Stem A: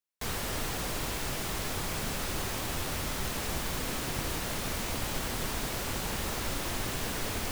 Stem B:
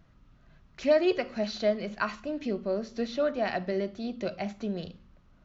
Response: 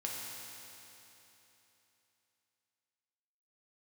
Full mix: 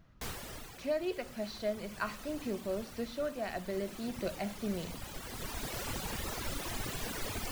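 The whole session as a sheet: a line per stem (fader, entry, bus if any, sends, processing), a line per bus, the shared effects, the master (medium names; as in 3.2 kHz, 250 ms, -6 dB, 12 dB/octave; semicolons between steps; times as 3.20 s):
-4.5 dB, 0.00 s, no send, reverb removal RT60 1.9 s; auto duck -8 dB, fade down 0.35 s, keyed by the second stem
-6.5 dB, 0.00 s, no send, none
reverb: none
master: gain riding within 5 dB 0.5 s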